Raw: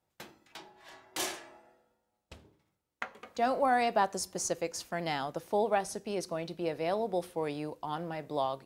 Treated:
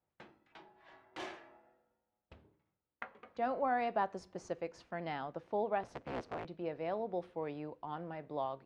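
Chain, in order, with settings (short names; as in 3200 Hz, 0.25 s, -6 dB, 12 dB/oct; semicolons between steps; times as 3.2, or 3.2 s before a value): 5.83–6.45 cycle switcher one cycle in 3, inverted; LPF 2400 Hz 12 dB/oct; gain -6 dB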